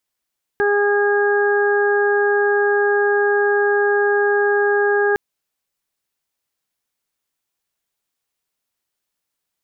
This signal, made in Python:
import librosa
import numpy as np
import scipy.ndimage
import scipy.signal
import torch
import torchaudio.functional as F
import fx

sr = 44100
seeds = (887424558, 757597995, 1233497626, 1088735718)

y = fx.additive_steady(sr, length_s=4.56, hz=409.0, level_db=-15.5, upper_db=(-7.5, -14.5, -4))